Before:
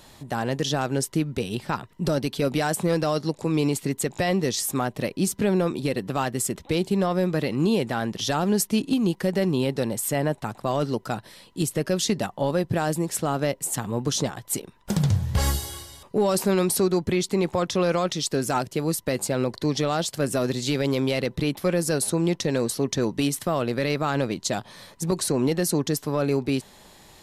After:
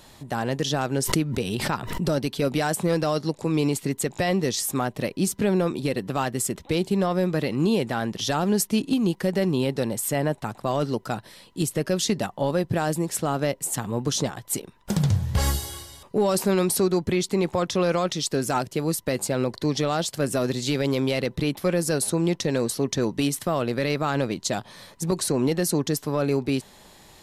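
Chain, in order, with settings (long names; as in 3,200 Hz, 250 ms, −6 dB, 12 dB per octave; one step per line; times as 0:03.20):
0:00.98–0:02.03: background raised ahead of every attack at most 45 dB per second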